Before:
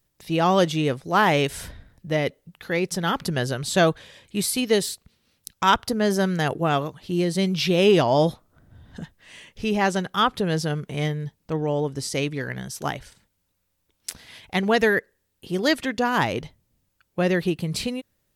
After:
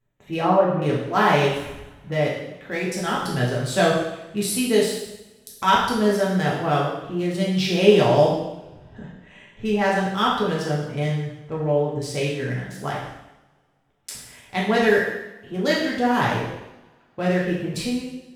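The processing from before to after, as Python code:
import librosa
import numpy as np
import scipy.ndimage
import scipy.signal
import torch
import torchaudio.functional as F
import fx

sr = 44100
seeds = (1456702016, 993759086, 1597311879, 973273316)

y = fx.wiener(x, sr, points=9)
y = fx.cheby2_lowpass(y, sr, hz=5100.0, order=4, stop_db=60, at=(0.41, 0.82))
y = fx.rev_double_slope(y, sr, seeds[0], early_s=0.9, late_s=2.8, knee_db=-27, drr_db=-5.5)
y = y * librosa.db_to_amplitude(-5.0)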